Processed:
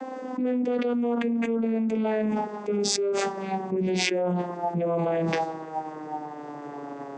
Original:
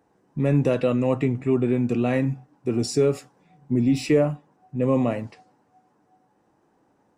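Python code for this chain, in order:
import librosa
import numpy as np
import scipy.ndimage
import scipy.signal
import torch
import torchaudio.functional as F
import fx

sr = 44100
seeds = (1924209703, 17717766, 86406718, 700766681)

y = fx.vocoder_glide(x, sr, note=60, semitones=-11)
y = scipy.signal.sosfilt(scipy.signal.butter(2, 370.0, 'highpass', fs=sr, output='sos'), y)
y = fx.env_flatten(y, sr, amount_pct=100)
y = F.gain(torch.from_numpy(y), -4.5).numpy()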